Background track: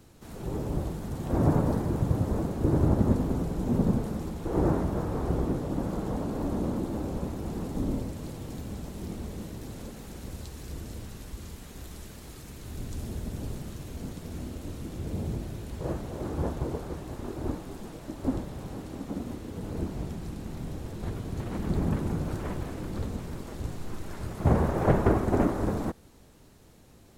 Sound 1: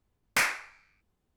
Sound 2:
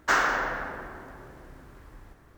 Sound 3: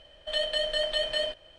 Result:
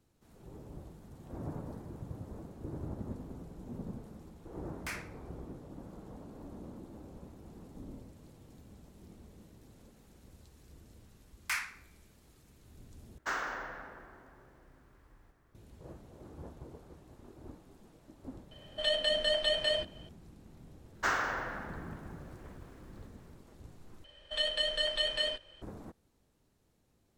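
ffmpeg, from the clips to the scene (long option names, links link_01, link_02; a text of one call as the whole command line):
ffmpeg -i bed.wav -i cue0.wav -i cue1.wav -i cue2.wav -filter_complex "[1:a]asplit=2[link_01][link_02];[2:a]asplit=2[link_03][link_04];[3:a]asplit=2[link_05][link_06];[0:a]volume=-17.5dB[link_07];[link_02]highpass=frequency=960:width=0.5412,highpass=frequency=960:width=1.3066[link_08];[link_06]equalizer=frequency=680:width=4.7:gain=-10.5[link_09];[link_07]asplit=3[link_10][link_11][link_12];[link_10]atrim=end=13.184[link_13];[link_03]atrim=end=2.37,asetpts=PTS-STARTPTS,volume=-12.5dB[link_14];[link_11]atrim=start=15.546:end=24.044[link_15];[link_09]atrim=end=1.58,asetpts=PTS-STARTPTS,volume=-2dB[link_16];[link_12]atrim=start=25.616[link_17];[link_01]atrim=end=1.36,asetpts=PTS-STARTPTS,volume=-15.5dB,afade=type=in:duration=0.004:curve=hsin,afade=type=out:start_time=1.356:duration=0.004:curve=hsin,adelay=4500[link_18];[link_08]atrim=end=1.36,asetpts=PTS-STARTPTS,volume=-8.5dB,afade=type=in:duration=0.004:curve=hsin,afade=type=out:start_time=1.356:duration=0.004:curve=hsin,adelay=11130[link_19];[link_05]atrim=end=1.58,asetpts=PTS-STARTPTS,volume=-1.5dB,afade=type=in:duration=0.004:curve=hsin,afade=type=out:start_time=1.576:duration=0.004:curve=hsin,adelay=18510[link_20];[link_04]atrim=end=2.37,asetpts=PTS-STARTPTS,volume=-8dB,afade=type=in:duration=0.004:curve=hsin,afade=type=out:start_time=2.366:duration=0.004:curve=hsin,adelay=20950[link_21];[link_13][link_14]acrossfade=duration=0.004:curve1=hsin:curve2=hsin[link_22];[link_22][link_15]acrossfade=duration=0.004:curve1=hsin:curve2=hsin[link_23];[link_23][link_16]acrossfade=duration=0.004:curve1=hsin:curve2=hsin[link_24];[link_24][link_17]acrossfade=duration=0.004:curve1=hsin:curve2=hsin[link_25];[link_25][link_18][link_19][link_20][link_21]amix=inputs=5:normalize=0" out.wav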